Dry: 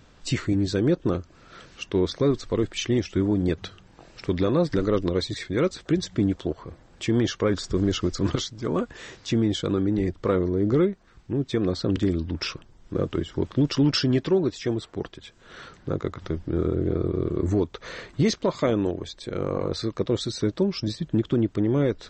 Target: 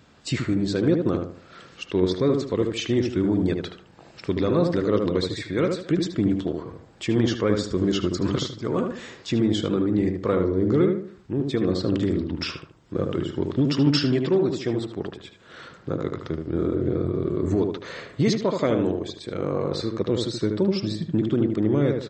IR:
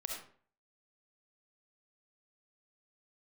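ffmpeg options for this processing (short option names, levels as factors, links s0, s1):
-filter_complex "[0:a]highpass=90,bandreject=f=5900:w=15,asplit=2[s0][s1];[s1]adelay=76,lowpass=f=1800:p=1,volume=0.631,asplit=2[s2][s3];[s3]adelay=76,lowpass=f=1800:p=1,volume=0.37,asplit=2[s4][s5];[s5]adelay=76,lowpass=f=1800:p=1,volume=0.37,asplit=2[s6][s7];[s7]adelay=76,lowpass=f=1800:p=1,volume=0.37,asplit=2[s8][s9];[s9]adelay=76,lowpass=f=1800:p=1,volume=0.37[s10];[s0][s2][s4][s6][s8][s10]amix=inputs=6:normalize=0"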